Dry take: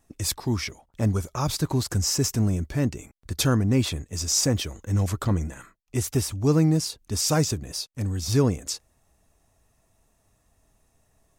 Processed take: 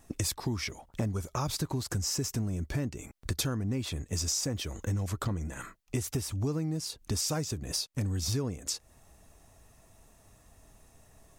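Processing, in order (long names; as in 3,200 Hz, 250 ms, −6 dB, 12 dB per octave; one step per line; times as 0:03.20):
downward compressor 10 to 1, threshold −36 dBFS, peak gain reduction 20.5 dB
level +7 dB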